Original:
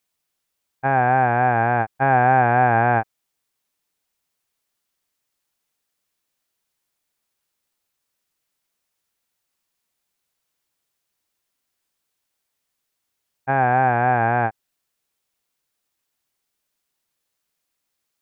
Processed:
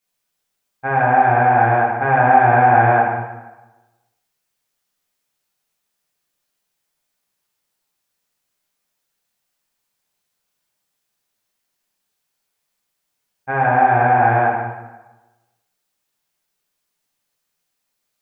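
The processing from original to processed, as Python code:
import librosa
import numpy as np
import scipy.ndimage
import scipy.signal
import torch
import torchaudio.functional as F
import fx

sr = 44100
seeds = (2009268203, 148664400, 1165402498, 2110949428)

y = fx.rev_plate(x, sr, seeds[0], rt60_s=1.1, hf_ratio=0.8, predelay_ms=0, drr_db=-6.5)
y = y * 10.0 ** (-4.5 / 20.0)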